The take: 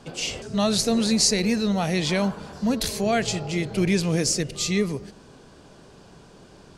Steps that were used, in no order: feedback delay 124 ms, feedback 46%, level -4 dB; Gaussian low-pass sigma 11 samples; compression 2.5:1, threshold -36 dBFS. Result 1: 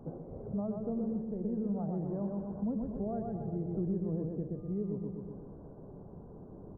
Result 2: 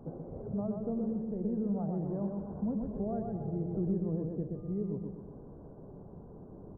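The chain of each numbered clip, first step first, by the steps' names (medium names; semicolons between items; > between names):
feedback delay > compression > Gaussian low-pass; compression > feedback delay > Gaussian low-pass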